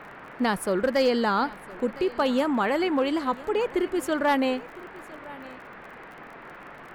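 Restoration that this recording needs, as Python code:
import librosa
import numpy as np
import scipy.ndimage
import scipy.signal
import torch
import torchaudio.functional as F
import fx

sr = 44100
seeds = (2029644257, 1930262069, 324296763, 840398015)

y = fx.fix_declip(x, sr, threshold_db=-14.5)
y = fx.fix_declick_ar(y, sr, threshold=6.5)
y = fx.noise_reduce(y, sr, print_start_s=5.93, print_end_s=6.43, reduce_db=27.0)
y = fx.fix_echo_inverse(y, sr, delay_ms=1009, level_db=-20.0)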